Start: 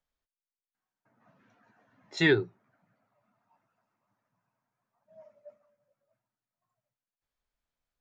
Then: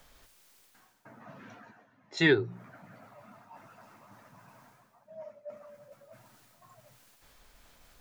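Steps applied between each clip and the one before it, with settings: notches 60/120/180 Hz; reverse; upward compressor, threshold -35 dBFS; reverse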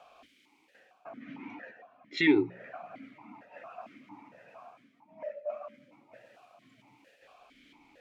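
dynamic EQ 2000 Hz, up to +6 dB, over -58 dBFS, Q 0.8; maximiser +17.5 dB; vowel sequencer 4.4 Hz; gain -1 dB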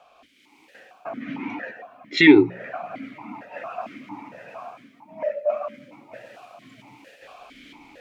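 AGC gain up to 11.5 dB; gain +1.5 dB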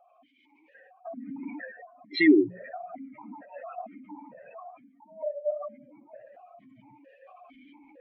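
spectral contrast raised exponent 2.3; gain -6 dB

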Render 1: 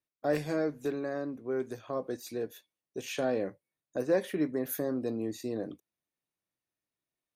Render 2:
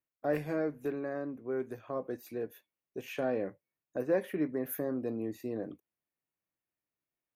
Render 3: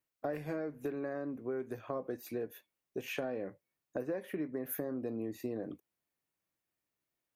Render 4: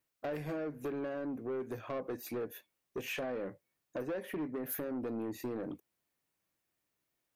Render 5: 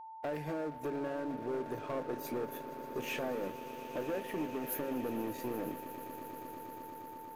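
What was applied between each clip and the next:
band shelf 5600 Hz -10.5 dB; gain -2 dB
compressor 10:1, threshold -37 dBFS, peak gain reduction 13.5 dB; gain +3.5 dB
soft clip -36.5 dBFS, distortion -11 dB; gain +4 dB
swelling echo 0.118 s, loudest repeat 8, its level -17 dB; crossover distortion -55 dBFS; whine 890 Hz -47 dBFS; gain +1 dB

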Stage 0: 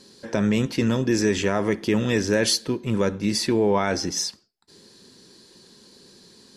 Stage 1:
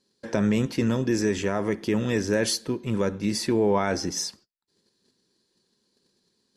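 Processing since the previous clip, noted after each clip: gate -47 dBFS, range -21 dB; dynamic EQ 3600 Hz, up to -4 dB, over -37 dBFS, Q 0.85; vocal rider within 4 dB 2 s; gain -2.5 dB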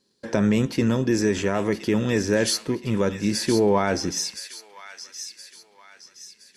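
thin delay 1.019 s, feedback 41%, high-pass 1900 Hz, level -8 dB; gain +2.5 dB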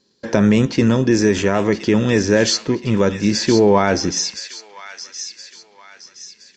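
downsampling 16000 Hz; gain +6.5 dB

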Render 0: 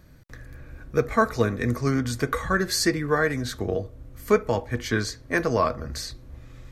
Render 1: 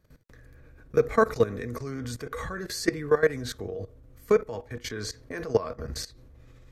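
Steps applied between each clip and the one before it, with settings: bell 450 Hz +7.5 dB 0.27 oct; level quantiser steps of 17 dB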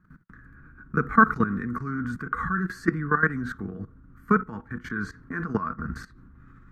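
EQ curve 120 Hz 0 dB, 180 Hz +13 dB, 340 Hz +1 dB, 550 Hz -17 dB, 1400 Hz +15 dB, 2200 Hz -6 dB, 3500 Hz -14 dB, 5100 Hz -17 dB, 8000 Hz -15 dB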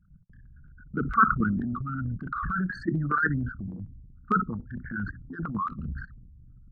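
formant sharpening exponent 3; transient shaper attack -5 dB, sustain +6 dB; stepped notch 4.4 Hz 410–3600 Hz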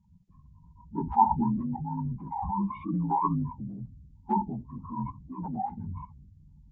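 inharmonic rescaling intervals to 76%

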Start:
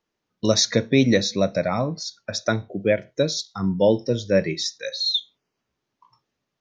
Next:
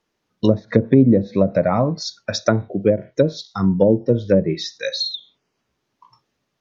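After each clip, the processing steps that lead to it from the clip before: treble ducked by the level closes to 430 Hz, closed at -15 dBFS; gain +6 dB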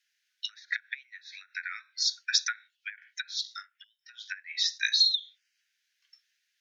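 steep high-pass 1500 Hz 96 dB/oct; gain +1.5 dB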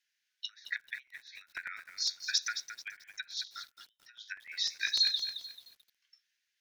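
crackling interface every 0.10 s, samples 128, repeat, from 0.77; lo-fi delay 0.219 s, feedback 35%, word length 8-bit, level -9 dB; gain -5 dB

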